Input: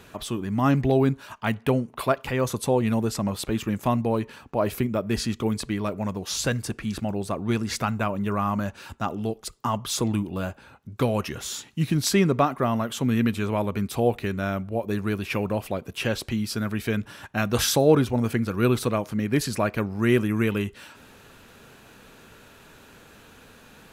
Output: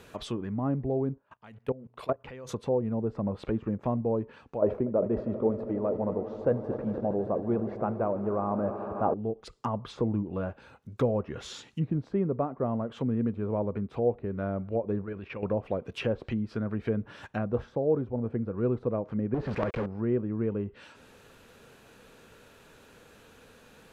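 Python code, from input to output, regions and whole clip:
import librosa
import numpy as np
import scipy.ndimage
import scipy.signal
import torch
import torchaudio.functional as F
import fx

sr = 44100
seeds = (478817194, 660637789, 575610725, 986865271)

y = fx.chain(x, sr, fx.high_shelf(hz=3300.0, db=-3.5),
    fx.hum_notches(base_hz=60, count=2),
    fx.level_steps(step_db=20), at=(1.18, 2.49))
y = fx.chain(y, sr, fx.peak_eq(hz=630.0, db=12.0, octaves=3.0),
    fx.echo_swell(ms=80, loudest=5, wet_db=-18.0),
    fx.sustainer(db_per_s=120.0), at=(4.62, 9.14))
y = fx.chain(y, sr, fx.lowpass(hz=2000.0, slope=12),
    fx.level_steps(step_db=12), at=(15.02, 15.43))
y = fx.chain(y, sr, fx.lowpass(hz=4300.0, slope=12),
    fx.peak_eq(hz=710.0, db=-4.5, octaves=0.36),
    fx.quant_companded(bits=2), at=(19.34, 19.86))
y = fx.env_lowpass_down(y, sr, base_hz=790.0, full_db=-22.5)
y = fx.peak_eq(y, sr, hz=490.0, db=6.0, octaves=0.43)
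y = fx.rider(y, sr, range_db=4, speed_s=0.5)
y = y * 10.0 ** (-8.0 / 20.0)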